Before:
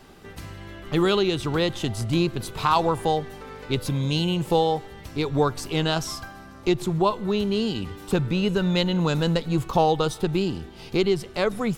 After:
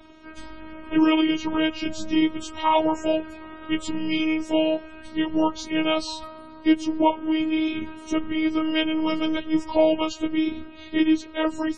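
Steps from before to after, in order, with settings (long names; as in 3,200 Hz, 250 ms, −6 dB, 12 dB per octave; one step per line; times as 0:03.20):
partials spread apart or drawn together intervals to 91%
phases set to zero 315 Hz
spectral peaks only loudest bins 64
level +5 dB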